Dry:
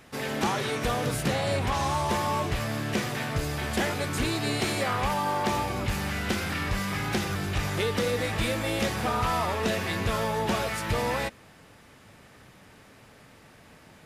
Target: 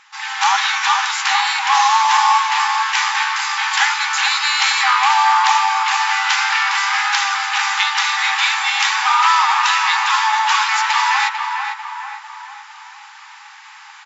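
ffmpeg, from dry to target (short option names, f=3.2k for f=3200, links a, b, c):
-filter_complex "[0:a]asplit=2[a][b];[b]adelay=447,lowpass=f=2k:p=1,volume=-4.5dB,asplit=2[c][d];[d]adelay=447,lowpass=f=2k:p=1,volume=0.54,asplit=2[e][f];[f]adelay=447,lowpass=f=2k:p=1,volume=0.54,asplit=2[g][h];[h]adelay=447,lowpass=f=2k:p=1,volume=0.54,asplit=2[i][j];[j]adelay=447,lowpass=f=2k:p=1,volume=0.54,asplit=2[k][l];[l]adelay=447,lowpass=f=2k:p=1,volume=0.54,asplit=2[m][n];[n]adelay=447,lowpass=f=2k:p=1,volume=0.54[o];[a][c][e][g][i][k][m][o]amix=inputs=8:normalize=0,dynaudnorm=f=140:g=5:m=9dB,afftfilt=real='re*between(b*sr/4096,770,7600)':imag='im*between(b*sr/4096,770,7600)':win_size=4096:overlap=0.75,volume=6.5dB"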